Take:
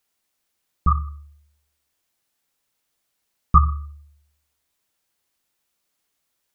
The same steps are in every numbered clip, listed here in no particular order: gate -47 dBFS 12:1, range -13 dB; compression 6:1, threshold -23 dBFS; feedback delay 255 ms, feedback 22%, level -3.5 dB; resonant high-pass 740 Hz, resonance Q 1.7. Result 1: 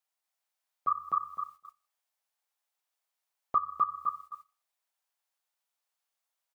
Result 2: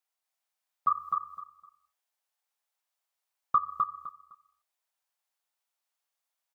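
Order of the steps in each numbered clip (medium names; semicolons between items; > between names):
feedback delay > compression > resonant high-pass > gate; resonant high-pass > compression > gate > feedback delay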